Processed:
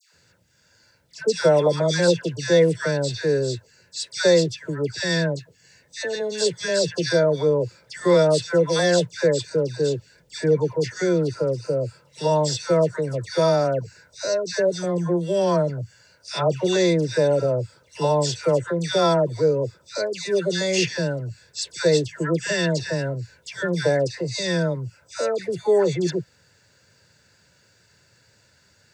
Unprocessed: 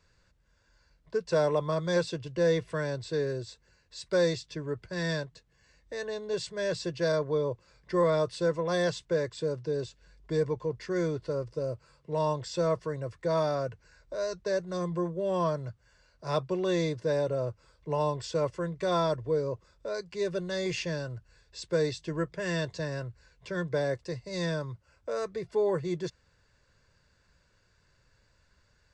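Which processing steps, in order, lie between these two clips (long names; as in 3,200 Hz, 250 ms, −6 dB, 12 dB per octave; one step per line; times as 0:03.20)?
high-pass filter 92 Hz 24 dB per octave
high-shelf EQ 5,900 Hz +10 dB
notch filter 1,100 Hz, Q 5
all-pass dispersion lows, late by 134 ms, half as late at 1,400 Hz
level +9 dB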